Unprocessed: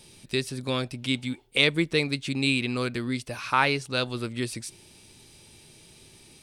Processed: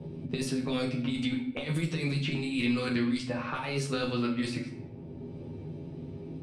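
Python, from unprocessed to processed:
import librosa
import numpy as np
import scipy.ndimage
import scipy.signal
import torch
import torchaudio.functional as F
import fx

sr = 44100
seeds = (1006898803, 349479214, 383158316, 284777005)

y = scipy.signal.sosfilt(scipy.signal.butter(2, 44.0, 'highpass', fs=sr, output='sos'), x)
y = y + 0.37 * np.pad(y, (int(7.4 * sr / 1000.0), 0))[:len(y)]
y = fx.env_lowpass(y, sr, base_hz=370.0, full_db=-21.0)
y = fx.over_compress(y, sr, threshold_db=-28.0, ratio=-0.5)
y = fx.room_early_taps(y, sr, ms=(12, 42), db=(-3.0, -9.5))
y = fx.room_shoebox(y, sr, seeds[0], volume_m3=110.0, walls='mixed', distance_m=0.57)
y = fx.band_squash(y, sr, depth_pct=70)
y = y * 10.0 ** (-4.5 / 20.0)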